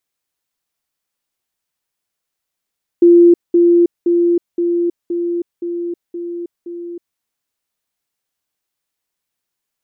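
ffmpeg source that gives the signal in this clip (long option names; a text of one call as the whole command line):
ffmpeg -f lavfi -i "aevalsrc='pow(10,(-4-3*floor(t/0.52))/20)*sin(2*PI*345*t)*clip(min(mod(t,0.52),0.32-mod(t,0.52))/0.005,0,1)':duration=4.16:sample_rate=44100" out.wav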